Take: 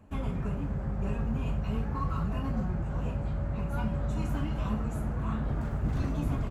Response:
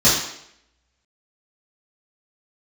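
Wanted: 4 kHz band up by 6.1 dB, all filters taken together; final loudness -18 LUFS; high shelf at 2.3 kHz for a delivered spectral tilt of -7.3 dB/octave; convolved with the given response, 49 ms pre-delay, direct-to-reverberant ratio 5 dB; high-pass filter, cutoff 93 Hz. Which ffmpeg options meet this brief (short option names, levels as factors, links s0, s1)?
-filter_complex "[0:a]highpass=93,highshelf=f=2300:g=4,equalizer=f=4000:t=o:g=5,asplit=2[s0][s1];[1:a]atrim=start_sample=2205,adelay=49[s2];[s1][s2]afir=irnorm=-1:irlink=0,volume=0.0501[s3];[s0][s3]amix=inputs=2:normalize=0,volume=4.73"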